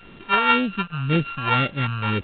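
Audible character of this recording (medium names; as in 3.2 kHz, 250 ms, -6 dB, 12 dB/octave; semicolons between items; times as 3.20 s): a buzz of ramps at a fixed pitch in blocks of 32 samples; phasing stages 2, 1.9 Hz, lowest notch 280–1000 Hz; a quantiser's noise floor 8-bit, dither none; µ-law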